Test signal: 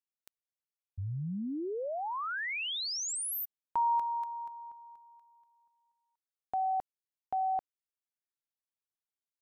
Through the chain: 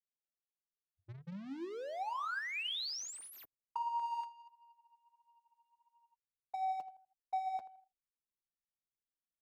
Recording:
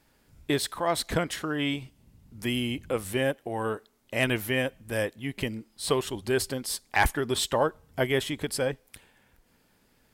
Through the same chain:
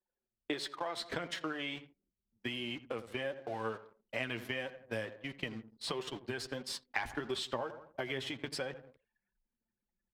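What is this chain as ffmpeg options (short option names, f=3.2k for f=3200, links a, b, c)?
-filter_complex "[0:a]aeval=exprs='val(0)+0.5*0.0112*sgn(val(0))':c=same,highpass=f=61:p=1,bandreject=f=50:t=h:w=6,bandreject=f=100:t=h:w=6,bandreject=f=150:t=h:w=6,agate=range=-19dB:threshold=-36dB:ratio=16:release=53:detection=peak,acrossover=split=250 5900:gain=0.126 1 0.141[a][b][c];[a][b][c]amix=inputs=3:normalize=0,asplit=2[d][e];[e]adelay=83,lowpass=f=2.1k:p=1,volume=-17.5dB,asplit=2[f][g];[g]adelay=83,lowpass=f=2.1k:p=1,volume=0.5,asplit=2[h][i];[i]adelay=83,lowpass=f=2.1k:p=1,volume=0.5,asplit=2[j][k];[k]adelay=83,lowpass=f=2.1k:p=1,volume=0.5[l];[f][h][j][l]amix=inputs=4:normalize=0[m];[d][m]amix=inputs=2:normalize=0,asubboost=boost=5:cutoff=160,acompressor=threshold=-33dB:ratio=6:attack=28:release=178:knee=1:detection=peak,flanger=delay=5.2:depth=3.7:regen=47:speed=1.5:shape=sinusoidal,anlmdn=0.0000398"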